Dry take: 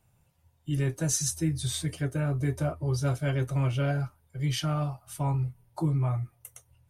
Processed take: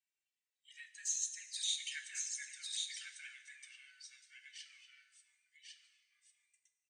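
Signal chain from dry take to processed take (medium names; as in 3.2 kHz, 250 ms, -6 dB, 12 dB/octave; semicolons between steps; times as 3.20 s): Doppler pass-by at 1.92 s, 12 m/s, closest 2.7 m; in parallel at 0 dB: peak limiter -31.5 dBFS, peak gain reduction 11 dB; on the sum: Chebyshev band-pass 1.7–8.7 kHz, order 5; on a send: delay 1098 ms -3.5 dB; on the sum: touch-sensitive flanger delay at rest 2.6 ms, full sweep at -36 dBFS; plate-style reverb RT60 1.4 s, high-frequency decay 0.85×, DRR 8.5 dB; trim +1 dB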